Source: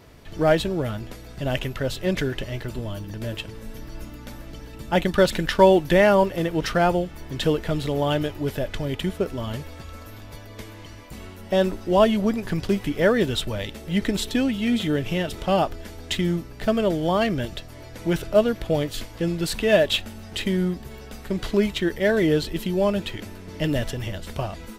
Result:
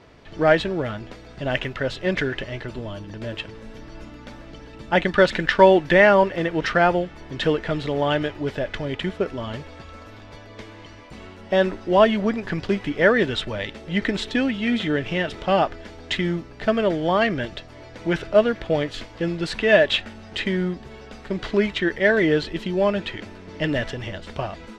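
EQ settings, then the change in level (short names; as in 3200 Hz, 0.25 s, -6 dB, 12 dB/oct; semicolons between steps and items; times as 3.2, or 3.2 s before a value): dynamic EQ 1800 Hz, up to +6 dB, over -41 dBFS, Q 1.7; air absorption 120 m; low shelf 180 Hz -8 dB; +2.5 dB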